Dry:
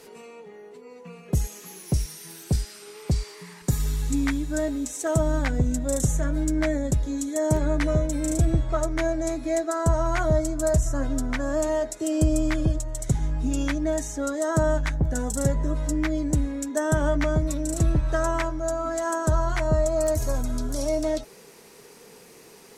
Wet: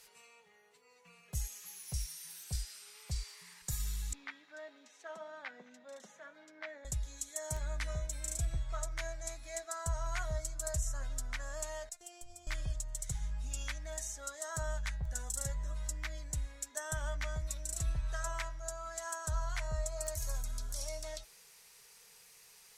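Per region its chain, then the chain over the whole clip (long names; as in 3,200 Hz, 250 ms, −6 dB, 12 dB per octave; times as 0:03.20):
0:04.13–0:06.85: Butterworth high-pass 200 Hz 72 dB per octave + high-frequency loss of the air 300 metres + single-tap delay 213 ms −23 dB
0:11.89–0:12.47: noise gate −40 dBFS, range −13 dB + downward compressor 4 to 1, threshold −29 dBFS + phases set to zero 349 Hz
whole clip: guitar amp tone stack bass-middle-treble 10-0-10; hum removal 320.9 Hz, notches 16; level −5 dB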